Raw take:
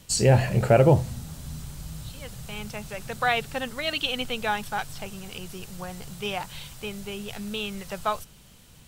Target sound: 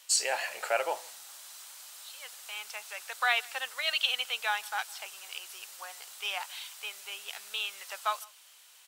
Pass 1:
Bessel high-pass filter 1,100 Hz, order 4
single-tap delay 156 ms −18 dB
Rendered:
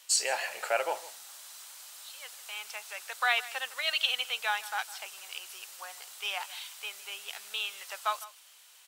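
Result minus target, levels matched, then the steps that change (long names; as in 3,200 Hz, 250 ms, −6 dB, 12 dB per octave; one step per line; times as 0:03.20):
echo-to-direct +7.5 dB
change: single-tap delay 156 ms −25.5 dB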